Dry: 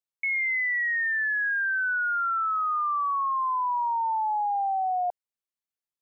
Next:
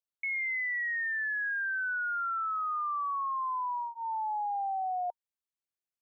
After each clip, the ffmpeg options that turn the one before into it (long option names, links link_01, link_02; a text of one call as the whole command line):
ffmpeg -i in.wav -af "bandreject=frequency=930:width=23,volume=-6dB" out.wav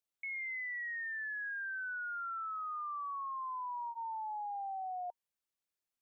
ffmpeg -i in.wav -af "alimiter=level_in=14dB:limit=-24dB:level=0:latency=1,volume=-14dB,volume=1dB" out.wav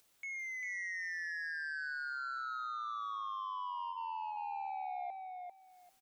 ffmpeg -i in.wav -filter_complex "[0:a]acompressor=mode=upward:threshold=-55dB:ratio=2.5,asoftclip=type=tanh:threshold=-39.5dB,asplit=2[link_01][link_02];[link_02]aecho=0:1:395|790|1185:0.631|0.107|0.0182[link_03];[link_01][link_03]amix=inputs=2:normalize=0,volume=1dB" out.wav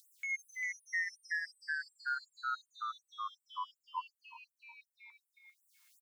ffmpeg -i in.wav -filter_complex "[0:a]asplit=2[link_01][link_02];[link_02]adelay=14,volume=-10.5dB[link_03];[link_01][link_03]amix=inputs=2:normalize=0,flanger=delay=9.5:depth=1.7:regen=75:speed=0.34:shape=sinusoidal,afftfilt=real='re*gte(b*sr/1024,890*pow(7600/890,0.5+0.5*sin(2*PI*2.7*pts/sr)))':imag='im*gte(b*sr/1024,890*pow(7600/890,0.5+0.5*sin(2*PI*2.7*pts/sr)))':win_size=1024:overlap=0.75,volume=8.5dB" out.wav